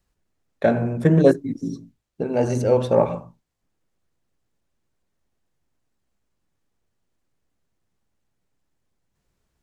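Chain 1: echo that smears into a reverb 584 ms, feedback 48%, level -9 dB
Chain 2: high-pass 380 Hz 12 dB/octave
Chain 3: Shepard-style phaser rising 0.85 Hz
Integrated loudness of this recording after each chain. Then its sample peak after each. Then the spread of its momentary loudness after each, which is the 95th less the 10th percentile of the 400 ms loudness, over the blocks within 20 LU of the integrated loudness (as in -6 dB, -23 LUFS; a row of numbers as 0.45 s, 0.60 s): -21.5 LUFS, -23.0 LUFS, -22.5 LUFS; -2.5 dBFS, -5.5 dBFS, -3.0 dBFS; 20 LU, 17 LU, 16 LU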